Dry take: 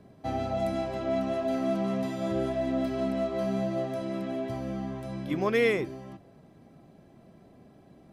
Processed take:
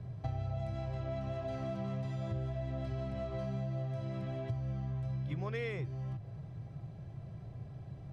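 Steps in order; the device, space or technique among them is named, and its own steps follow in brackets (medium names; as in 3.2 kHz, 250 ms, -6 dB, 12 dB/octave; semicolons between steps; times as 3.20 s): jukebox (low-pass 6.7 kHz 12 dB/octave; resonant low shelf 170 Hz +11.5 dB, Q 3; compression 4:1, threshold -37 dBFS, peak gain reduction 15.5 dB)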